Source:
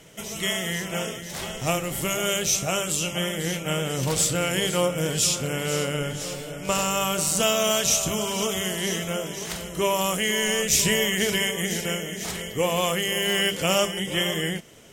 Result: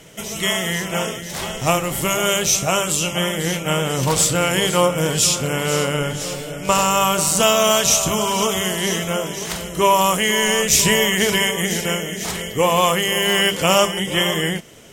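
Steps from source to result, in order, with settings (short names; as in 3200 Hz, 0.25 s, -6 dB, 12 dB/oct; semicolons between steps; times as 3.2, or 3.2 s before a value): dynamic EQ 1000 Hz, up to +7 dB, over -43 dBFS, Q 2.2; gain +5.5 dB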